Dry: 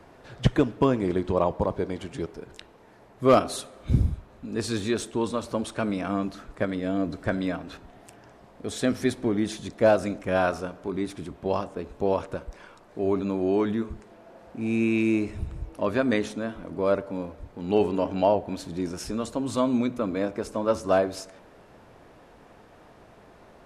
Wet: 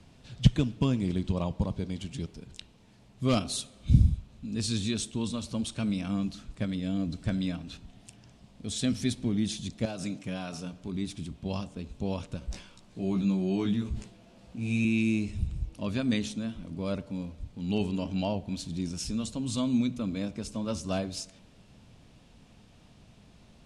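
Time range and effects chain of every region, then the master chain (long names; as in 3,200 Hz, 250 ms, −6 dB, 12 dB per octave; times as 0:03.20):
0:09.85–0:10.73: high-pass filter 130 Hz + comb filter 6.8 ms, depth 35% + downward compressor 3 to 1, threshold −25 dBFS
0:12.40–0:14.85: double-tracking delay 16 ms −3 dB + level that may fall only so fast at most 92 dB per second
whole clip: low-pass filter 10,000 Hz 24 dB per octave; flat-topped bell 790 Hz −14.5 dB 3 octaves; level +2 dB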